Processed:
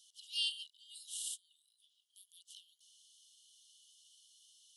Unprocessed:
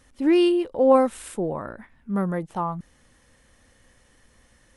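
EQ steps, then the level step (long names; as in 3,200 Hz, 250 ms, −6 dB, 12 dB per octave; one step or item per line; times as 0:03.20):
Chebyshev high-pass filter 2,900 Hz, order 10
high-shelf EQ 5,400 Hz −8.5 dB
+6.5 dB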